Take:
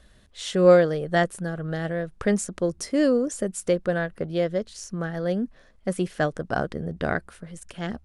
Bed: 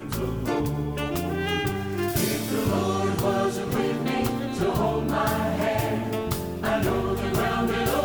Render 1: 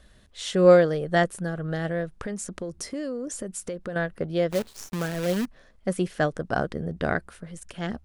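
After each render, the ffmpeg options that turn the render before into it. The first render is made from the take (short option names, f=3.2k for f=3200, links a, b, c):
-filter_complex "[0:a]asettb=1/sr,asplit=3[a][b][c];[a]atrim=end=2.074[d];[b]atrim=start=2.07:end=3.96,asetpts=PTS-STARTPTS,afade=t=in:d=0.004:c=qsin,afade=t=out:st=1.886:d=0.004:c=qsin,acompressor=threshold=-29dB:ratio=6:attack=3.2:release=140:knee=1:detection=peak[e];[c]atrim=start=3.956[f];[d][e]acrossfade=d=0.004:c1=hsin:c2=qsin[g];[g][f]acrossfade=d=0.004:c1=qsin:c2=hsin,asplit=3[h][i][j];[h]afade=t=out:st=4.5:d=0.02[k];[i]acrusher=bits=6:dc=4:mix=0:aa=0.000001,afade=t=in:st=4.5:d=0.02,afade=t=out:st=5.44:d=0.02[l];[j]afade=t=in:st=5.44:d=0.02[m];[k][l][m]amix=inputs=3:normalize=0"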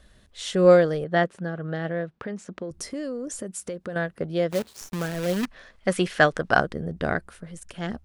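-filter_complex "[0:a]asettb=1/sr,asplit=3[a][b][c];[a]atrim=end=1.044[d];[b]atrim=start=1.04:end=2.71,asetpts=PTS-STARTPTS,afade=t=in:d=0.004:c=qsin,afade=t=out:st=1.666:d=0.004:c=qsin,highpass=130,lowpass=3.7k[e];[c]atrim=start=2.706[f];[d][e]acrossfade=d=0.004:c1=hsin:c2=qsin[g];[g][f]acrossfade=d=0.004:c1=qsin:c2=hsin,asettb=1/sr,asplit=3[h][i][j];[h]atrim=end=3.394[k];[i]atrim=start=3.39:end=4.82,asetpts=PTS-STARTPTS,afade=t=in:d=0.004:c=qsin,afade=t=out:st=1.426:d=0.004:c=qsin,highpass=74[l];[j]atrim=start=4.816[m];[k][l]acrossfade=d=0.004:c1=hsin:c2=qsin[n];[n][m]acrossfade=d=0.004:c1=qsin:c2=hsin,asettb=1/sr,asplit=3[o][p][q];[o]atrim=end=5.434[r];[p]atrim=start=5.43:end=6.61,asetpts=PTS-STARTPTS,afade=t=in:d=0.004:c=qsin,afade=t=out:st=1.176:d=0.004:c=qsin,equalizer=f=2.3k:w=0.31:g=11[s];[q]atrim=start=6.606[t];[r][s]acrossfade=d=0.004:c1=hsin:c2=qsin[u];[u][t]acrossfade=d=0.004:c1=qsin:c2=hsin"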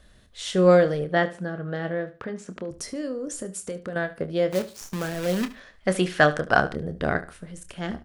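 -filter_complex "[0:a]asplit=2[a][b];[b]adelay=27,volume=-10.5dB[c];[a][c]amix=inputs=2:normalize=0,aecho=1:1:73|146:0.158|0.0396"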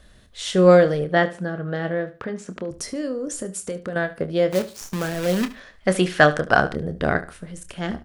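-af "volume=3.5dB,alimiter=limit=-1dB:level=0:latency=1"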